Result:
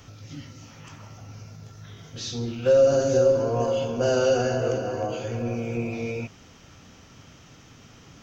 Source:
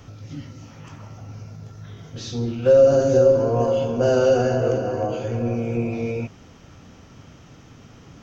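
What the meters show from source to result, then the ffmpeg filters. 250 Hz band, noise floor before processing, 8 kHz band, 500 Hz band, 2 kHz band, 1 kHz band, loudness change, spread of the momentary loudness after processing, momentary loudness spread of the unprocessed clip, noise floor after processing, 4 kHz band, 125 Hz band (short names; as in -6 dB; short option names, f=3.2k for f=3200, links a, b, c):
-4.5 dB, -47 dBFS, n/a, -4.0 dB, -0.5 dB, -3.0 dB, -4.0 dB, 22 LU, 23 LU, -51 dBFS, +2.0 dB, -5.0 dB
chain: -af "tiltshelf=f=1.5k:g=-4,volume=-1dB"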